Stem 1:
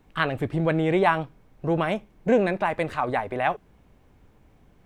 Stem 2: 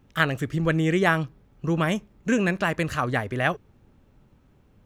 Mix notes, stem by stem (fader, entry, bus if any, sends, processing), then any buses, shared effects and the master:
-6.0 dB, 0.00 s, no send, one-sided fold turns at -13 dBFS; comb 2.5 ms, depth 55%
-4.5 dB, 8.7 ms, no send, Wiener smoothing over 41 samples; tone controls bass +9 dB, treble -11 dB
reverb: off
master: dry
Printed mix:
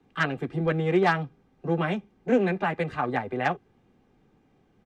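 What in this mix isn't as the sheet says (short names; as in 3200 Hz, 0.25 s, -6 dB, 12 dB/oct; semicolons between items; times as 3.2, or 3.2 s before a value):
stem 2: polarity flipped; master: extra three-band isolator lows -18 dB, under 190 Hz, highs -14 dB, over 7400 Hz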